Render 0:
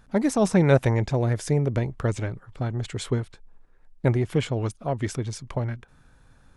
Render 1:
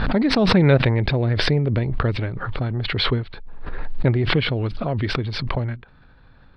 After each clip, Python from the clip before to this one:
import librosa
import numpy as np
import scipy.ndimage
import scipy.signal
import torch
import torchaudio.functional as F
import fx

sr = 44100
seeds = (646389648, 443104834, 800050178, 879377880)

y = scipy.signal.sosfilt(scipy.signal.ellip(4, 1.0, 40, 4400.0, 'lowpass', fs=sr, output='sos'), x)
y = fx.dynamic_eq(y, sr, hz=860.0, q=1.0, threshold_db=-37.0, ratio=4.0, max_db=-5)
y = fx.pre_swell(y, sr, db_per_s=28.0)
y = F.gain(torch.from_numpy(y), 4.0).numpy()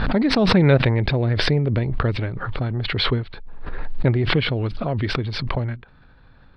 y = x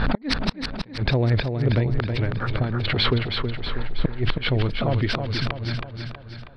y = fx.gate_flip(x, sr, shuts_db=-8.0, range_db=-33)
y = fx.echo_feedback(y, sr, ms=321, feedback_pct=52, wet_db=-6.0)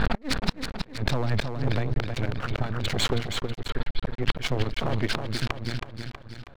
y = np.maximum(x, 0.0)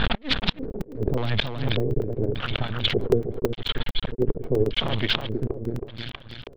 y = fx.filter_lfo_lowpass(x, sr, shape='square', hz=0.85, low_hz=420.0, high_hz=3300.0, q=4.7)
y = fx.buffer_crackle(y, sr, first_s=0.59, period_s=0.11, block=128, kind='zero')